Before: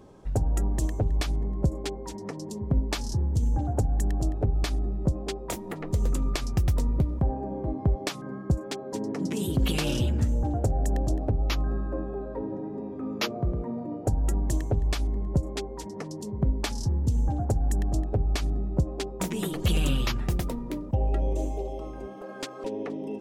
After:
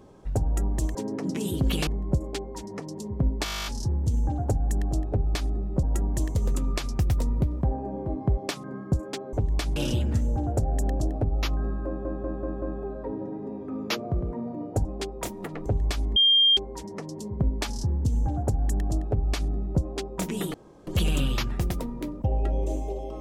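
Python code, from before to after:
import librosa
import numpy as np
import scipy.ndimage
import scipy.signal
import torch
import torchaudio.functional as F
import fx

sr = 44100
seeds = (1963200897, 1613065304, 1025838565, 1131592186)

y = fx.edit(x, sr, fx.swap(start_s=0.95, length_s=0.43, other_s=8.91, other_length_s=0.92),
    fx.stutter(start_s=2.95, slice_s=0.02, count=12),
    fx.swap(start_s=5.12, length_s=0.81, other_s=14.16, other_length_s=0.52),
    fx.stutter(start_s=11.93, slice_s=0.19, count=5),
    fx.bleep(start_s=15.18, length_s=0.41, hz=3200.0, db=-15.5),
    fx.insert_room_tone(at_s=19.56, length_s=0.33), tone=tone)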